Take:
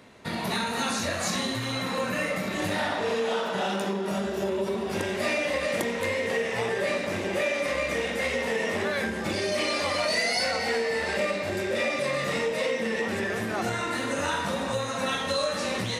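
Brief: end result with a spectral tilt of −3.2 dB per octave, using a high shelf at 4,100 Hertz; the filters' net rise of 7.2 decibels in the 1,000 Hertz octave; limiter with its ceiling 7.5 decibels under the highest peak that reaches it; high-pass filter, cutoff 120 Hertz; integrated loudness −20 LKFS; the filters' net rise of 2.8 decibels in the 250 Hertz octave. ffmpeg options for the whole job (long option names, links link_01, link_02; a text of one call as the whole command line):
ffmpeg -i in.wav -af "highpass=120,equalizer=frequency=250:width_type=o:gain=3.5,equalizer=frequency=1000:width_type=o:gain=8.5,highshelf=frequency=4100:gain=5,volume=6dB,alimiter=limit=-11dB:level=0:latency=1" out.wav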